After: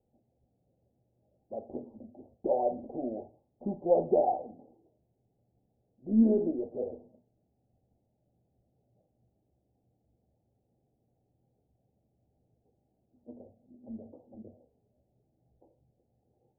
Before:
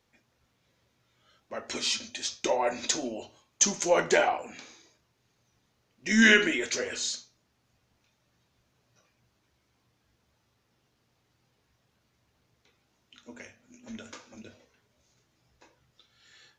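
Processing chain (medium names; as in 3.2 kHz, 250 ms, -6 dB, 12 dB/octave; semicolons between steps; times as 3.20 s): Chebyshev low-pass 790 Hz, order 6; tape noise reduction on one side only decoder only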